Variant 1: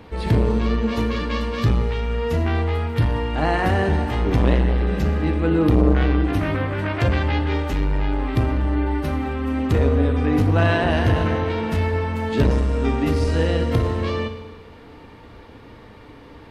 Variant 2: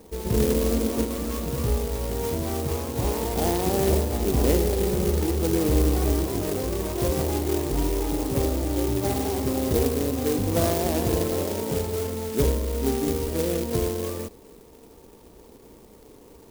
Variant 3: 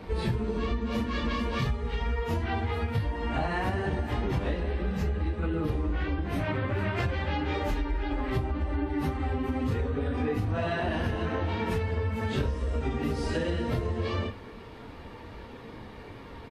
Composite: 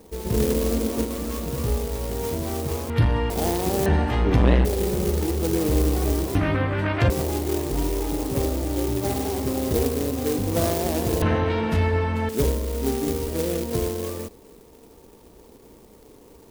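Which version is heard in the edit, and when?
2
0:02.90–0:03.30: punch in from 1
0:03.86–0:04.65: punch in from 1
0:06.35–0:07.10: punch in from 1
0:11.22–0:12.29: punch in from 1
not used: 3

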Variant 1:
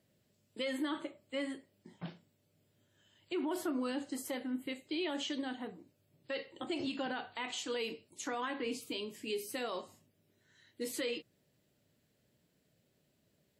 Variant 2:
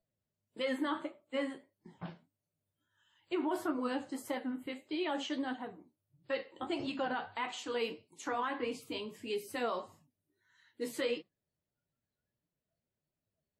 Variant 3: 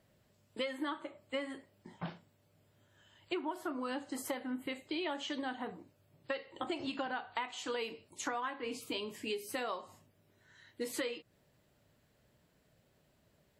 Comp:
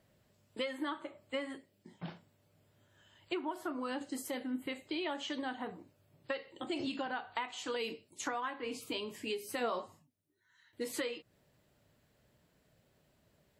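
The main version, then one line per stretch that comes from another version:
3
0:01.57–0:02.08: punch in from 1
0:04.01–0:04.62: punch in from 1
0:06.48–0:07.01: punch in from 1
0:07.76–0:08.20: punch in from 1
0:09.60–0:10.73: punch in from 2

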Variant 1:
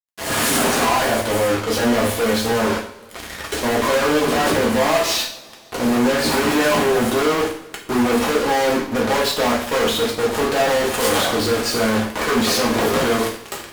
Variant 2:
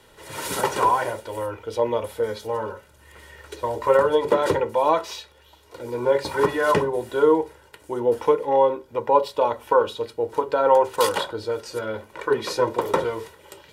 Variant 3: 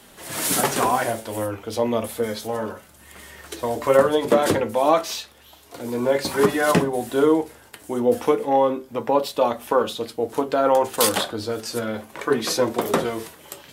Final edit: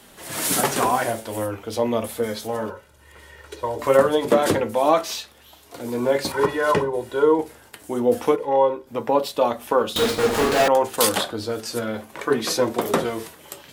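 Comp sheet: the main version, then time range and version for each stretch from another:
3
0:02.70–0:03.79: punch in from 2
0:06.32–0:07.39: punch in from 2
0:08.36–0:08.87: punch in from 2
0:09.96–0:10.68: punch in from 1

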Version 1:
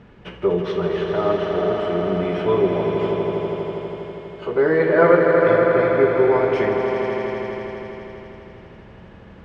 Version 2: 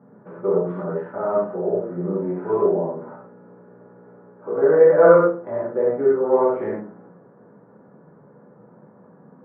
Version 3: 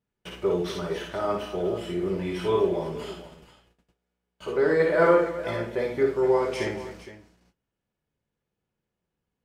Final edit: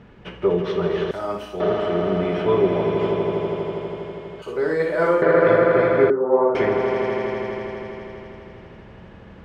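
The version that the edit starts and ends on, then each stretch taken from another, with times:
1
0:01.11–0:01.60: punch in from 3
0:04.42–0:05.22: punch in from 3
0:06.10–0:06.55: punch in from 2

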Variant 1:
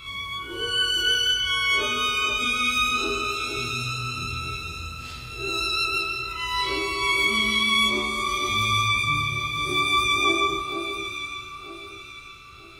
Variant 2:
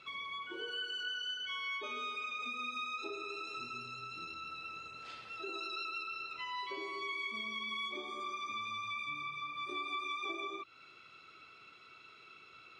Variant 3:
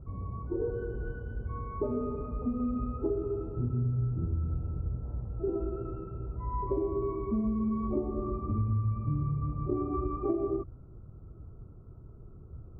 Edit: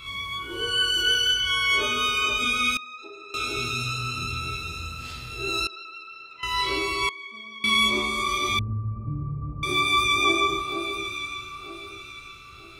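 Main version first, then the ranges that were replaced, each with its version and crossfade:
1
0:02.77–0:03.34: punch in from 2
0:05.67–0:06.43: punch in from 2
0:07.09–0:07.64: punch in from 2
0:08.59–0:09.63: punch in from 3

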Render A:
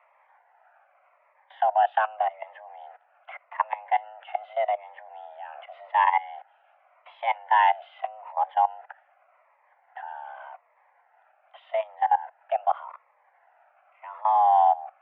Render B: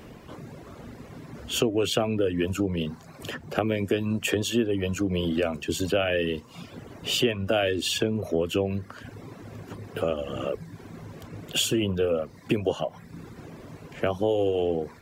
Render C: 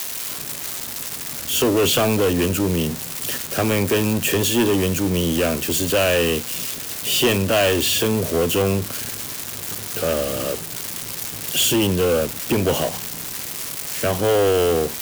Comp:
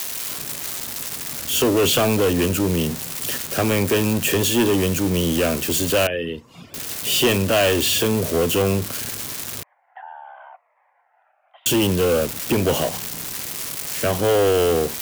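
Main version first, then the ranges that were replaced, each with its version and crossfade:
C
0:06.07–0:06.74: punch in from B
0:09.63–0:11.66: punch in from A

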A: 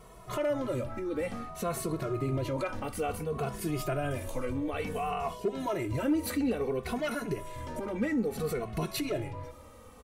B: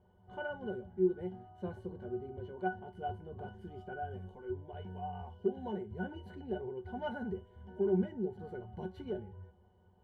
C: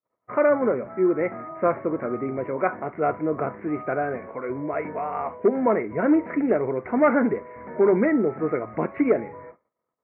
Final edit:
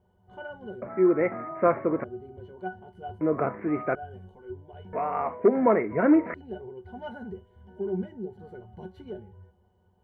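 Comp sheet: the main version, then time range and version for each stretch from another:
B
0:00.82–0:02.04: punch in from C
0:03.21–0:03.95: punch in from C
0:04.93–0:06.34: punch in from C
not used: A

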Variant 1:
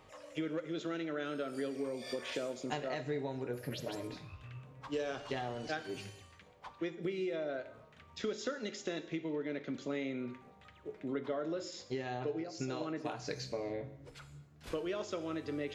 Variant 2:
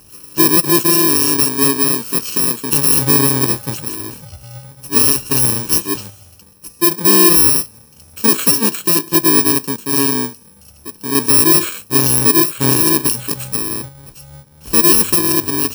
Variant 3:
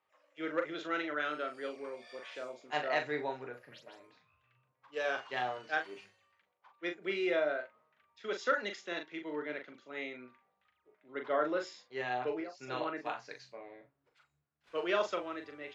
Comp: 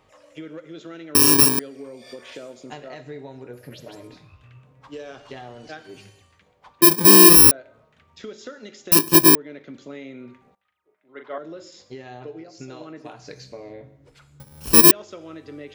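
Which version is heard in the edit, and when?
1
0:01.15–0:01.59: punch in from 2
0:06.82–0:07.51: punch in from 2
0:08.92–0:09.35: punch in from 2
0:10.55–0:11.38: punch in from 3
0:14.40–0:14.91: punch in from 2

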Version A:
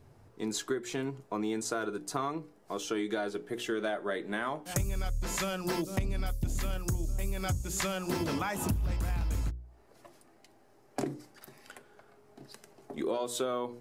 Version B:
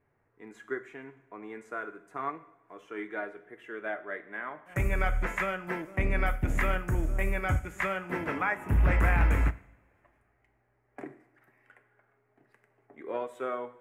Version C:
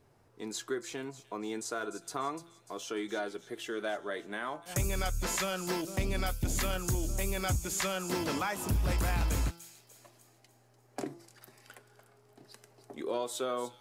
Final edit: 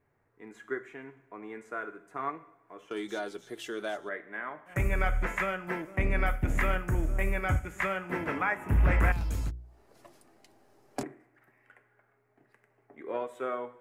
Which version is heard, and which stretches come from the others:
B
0:02.91–0:04.09: punch in from C
0:09.12–0:11.03: punch in from A

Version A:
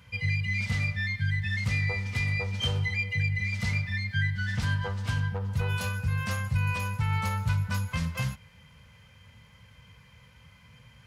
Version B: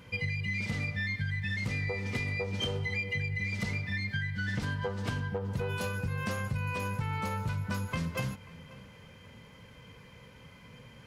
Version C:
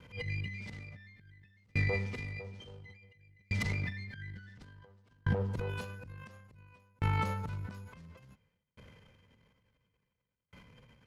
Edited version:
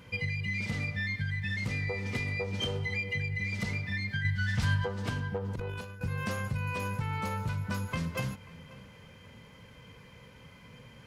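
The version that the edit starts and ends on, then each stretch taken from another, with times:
B
0:04.25–0:04.85: punch in from A
0:05.54–0:06.01: punch in from C

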